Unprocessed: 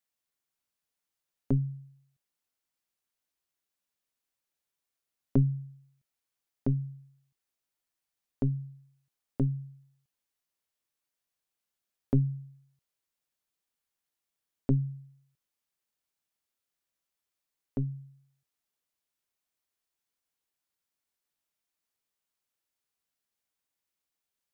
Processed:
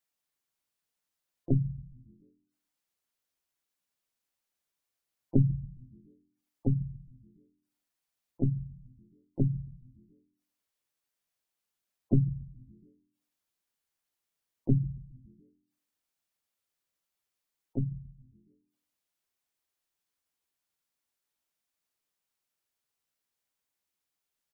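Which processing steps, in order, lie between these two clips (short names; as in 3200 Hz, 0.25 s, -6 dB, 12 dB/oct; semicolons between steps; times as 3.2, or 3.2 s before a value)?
frequency-shifting echo 0.138 s, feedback 56%, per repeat -87 Hz, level -19.5 dB; harmoniser -3 st -9 dB, +4 st -14 dB; spectral gate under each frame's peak -25 dB strong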